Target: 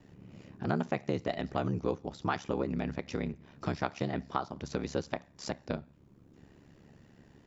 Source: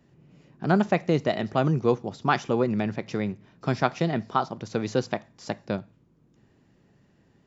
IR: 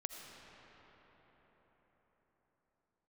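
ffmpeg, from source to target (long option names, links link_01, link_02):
-af "aeval=exprs='val(0)*sin(2*PI*35*n/s)':channel_layout=same,acompressor=threshold=-45dB:ratio=2,volume=6.5dB"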